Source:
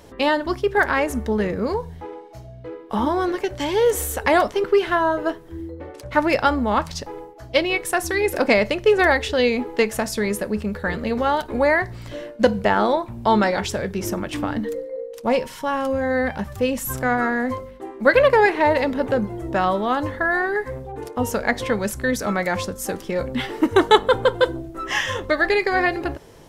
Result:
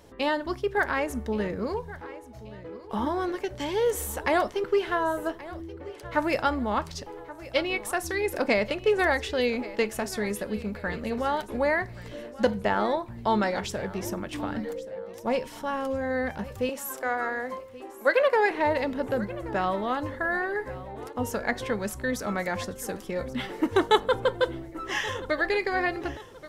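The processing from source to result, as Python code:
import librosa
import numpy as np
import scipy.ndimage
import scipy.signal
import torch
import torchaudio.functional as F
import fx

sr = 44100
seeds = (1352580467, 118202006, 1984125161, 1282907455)

p1 = fx.highpass(x, sr, hz=330.0, slope=24, at=(16.69, 18.51))
p2 = p1 + fx.echo_feedback(p1, sr, ms=1128, feedback_pct=38, wet_db=-17.5, dry=0)
y = p2 * librosa.db_to_amplitude(-7.0)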